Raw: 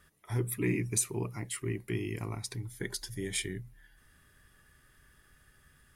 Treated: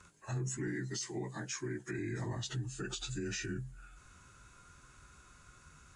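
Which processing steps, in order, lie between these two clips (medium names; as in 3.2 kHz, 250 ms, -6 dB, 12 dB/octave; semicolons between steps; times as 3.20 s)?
frequency axis rescaled in octaves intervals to 90%; 0.67–1.99 s: high-pass 260 Hz 6 dB/octave; in parallel at -1 dB: compression, threshold -47 dBFS, peak gain reduction 18.5 dB; on the sum: peak limiter -31 dBFS, peak gain reduction 13.5 dB; trim +1 dB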